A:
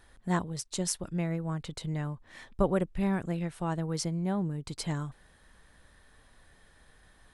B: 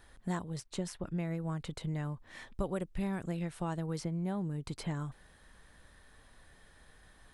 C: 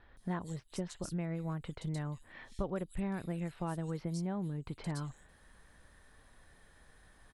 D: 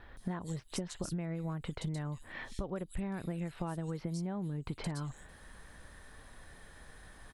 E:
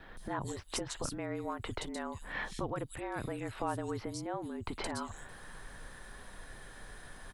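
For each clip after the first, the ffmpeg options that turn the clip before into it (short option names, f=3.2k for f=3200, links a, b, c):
-filter_complex "[0:a]acrossover=split=3200|7500[a][b][c];[a]acompressor=threshold=-32dB:ratio=4[d];[b]acompressor=threshold=-57dB:ratio=4[e];[c]acompressor=threshold=-54dB:ratio=4[f];[d][e][f]amix=inputs=3:normalize=0"
-filter_complex "[0:a]acrossover=split=3600[a][b];[b]adelay=170[c];[a][c]amix=inputs=2:normalize=0,volume=-1.5dB"
-af "acompressor=threshold=-41dB:ratio=10,volume=7.5dB"
-af "afftfilt=real='re*lt(hypot(re,im),0.1)':imag='im*lt(hypot(re,im),0.1)':win_size=1024:overlap=0.75,adynamicequalizer=threshold=0.00158:dfrequency=1100:dqfactor=1.2:tfrequency=1100:tqfactor=1.2:attack=5:release=100:ratio=0.375:range=2:mode=boostabove:tftype=bell,afreqshift=-40,volume=4.5dB"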